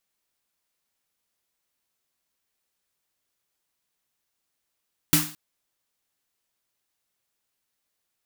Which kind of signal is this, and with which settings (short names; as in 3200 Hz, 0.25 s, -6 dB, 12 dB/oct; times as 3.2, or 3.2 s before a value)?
snare drum length 0.22 s, tones 160 Hz, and 300 Hz, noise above 790 Hz, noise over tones 3 dB, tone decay 0.35 s, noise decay 0.40 s